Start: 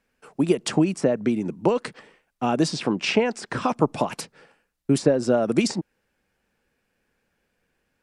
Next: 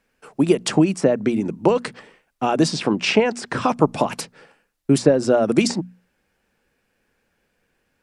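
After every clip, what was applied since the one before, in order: hum notches 60/120/180/240 Hz; trim +4 dB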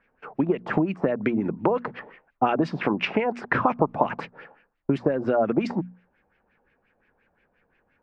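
treble shelf 8 kHz -6.5 dB; compression 6:1, threshold -20 dBFS, peak gain reduction 11.5 dB; LFO low-pass sine 5.7 Hz 760–2500 Hz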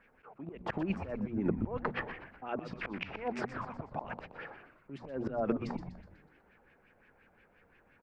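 compression 6:1, threshold -24 dBFS, peak gain reduction 10 dB; slow attack 286 ms; on a send: frequency-shifting echo 123 ms, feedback 51%, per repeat -110 Hz, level -10.5 dB; on the sum: trim +2 dB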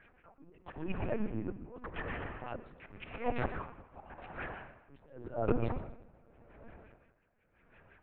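reverberation RT60 3.9 s, pre-delay 36 ms, DRR 7.5 dB; LPC vocoder at 8 kHz pitch kept; logarithmic tremolo 0.89 Hz, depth 18 dB; trim +4 dB

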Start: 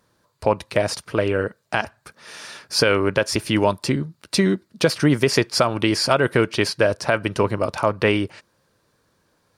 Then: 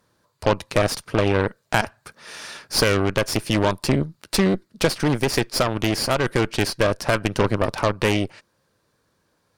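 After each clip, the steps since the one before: Chebyshev shaper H 8 -16 dB, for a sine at -4 dBFS; gain riding within 3 dB 0.5 s; trim -2 dB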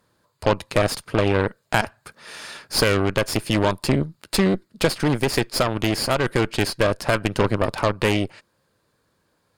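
band-stop 5.8 kHz, Q 8.5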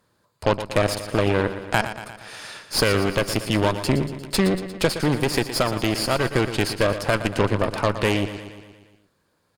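feedback delay 117 ms, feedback 59%, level -11.5 dB; trim -1 dB

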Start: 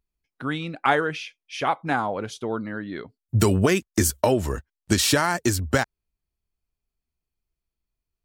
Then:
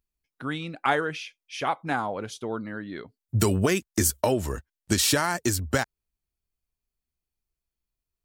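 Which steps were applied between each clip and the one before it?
treble shelf 5.8 kHz +5 dB; trim -3.5 dB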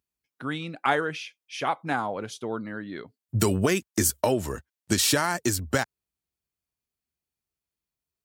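high-pass 90 Hz 12 dB/octave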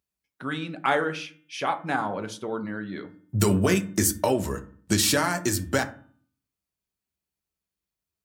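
de-hum 301.1 Hz, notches 12; on a send at -7.5 dB: reverberation RT60 0.45 s, pre-delay 5 ms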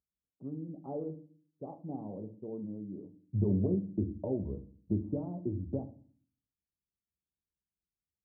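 Gaussian low-pass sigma 17 samples; trim -5.5 dB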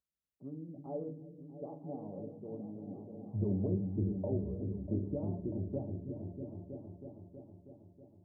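peaking EQ 560 Hz +7 dB 0.34 oct; band-stop 520 Hz, Q 12; delay with an opening low-pass 321 ms, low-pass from 200 Hz, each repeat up 1 oct, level -3 dB; trim -4.5 dB

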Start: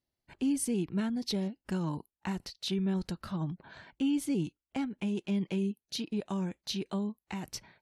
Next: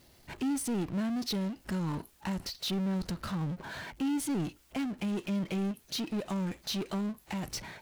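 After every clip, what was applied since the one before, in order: de-esser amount 70%; power-law waveshaper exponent 0.5; trim -4 dB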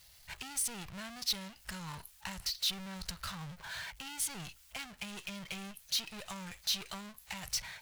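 amplifier tone stack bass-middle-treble 10-0-10; trim +5 dB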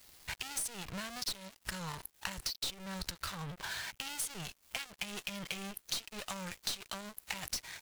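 one-sided wavefolder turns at -30.5 dBFS; compression 4:1, threshold -49 dBFS, peak gain reduction 16 dB; crossover distortion -57 dBFS; trim +13.5 dB

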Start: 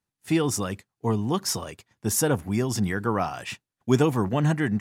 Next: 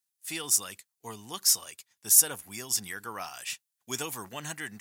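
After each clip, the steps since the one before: pre-emphasis filter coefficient 0.97; trim +6 dB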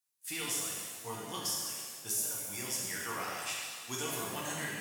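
compression 6:1, threshold -32 dBFS, peak gain reduction 17.5 dB; pitch-shifted reverb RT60 1.7 s, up +7 st, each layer -8 dB, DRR -4.5 dB; trim -4.5 dB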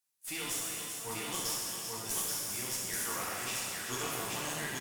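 multi-tap echo 390/832 ms -8.5/-3 dB; one-sided clip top -41 dBFS; trim +1.5 dB

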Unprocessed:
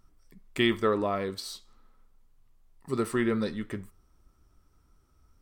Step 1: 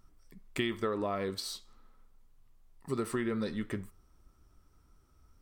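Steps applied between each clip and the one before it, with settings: compression 6:1, threshold -29 dBFS, peak gain reduction 9.5 dB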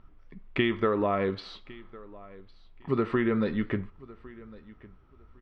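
low-pass 3.1 kHz 24 dB/octave; feedback delay 1106 ms, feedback 21%, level -21 dB; trim +7 dB

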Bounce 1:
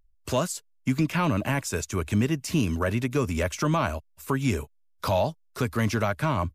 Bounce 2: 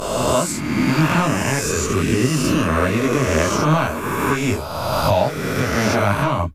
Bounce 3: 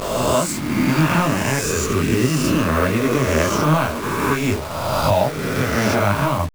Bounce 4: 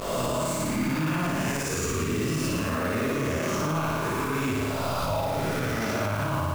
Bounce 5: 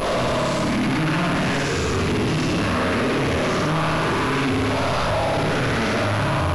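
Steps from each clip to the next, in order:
reverse spectral sustain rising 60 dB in 2.09 s; detune thickener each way 34 cents; trim +7.5 dB
send-on-delta sampling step -27 dBFS
on a send: flutter echo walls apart 9.8 m, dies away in 1.3 s; on the sum: peak limiter -11 dBFS, peak gain reduction 9.5 dB; trim -7.5 dB
waveshaping leveller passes 5; class-D stage that switches slowly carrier 11 kHz

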